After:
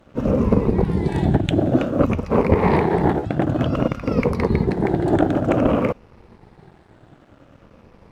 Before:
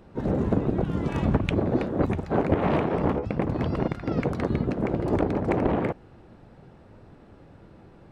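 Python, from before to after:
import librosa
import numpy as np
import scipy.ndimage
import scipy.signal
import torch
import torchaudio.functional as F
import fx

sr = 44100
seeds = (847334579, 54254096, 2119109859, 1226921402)

y = fx.spec_ripple(x, sr, per_octave=0.87, drift_hz=-0.54, depth_db=10)
y = fx.peak_eq(y, sr, hz=1300.0, db=-8.0, octaves=0.92, at=(0.93, 1.74))
y = np.sign(y) * np.maximum(np.abs(y) - 10.0 ** (-52.5 / 20.0), 0.0)
y = y * 10.0 ** (5.5 / 20.0)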